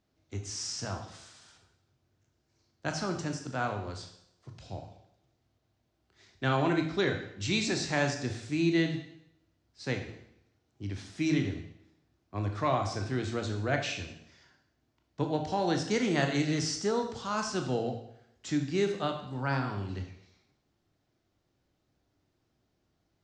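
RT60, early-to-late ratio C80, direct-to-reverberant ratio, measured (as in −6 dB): 0.70 s, 10.5 dB, 4.0 dB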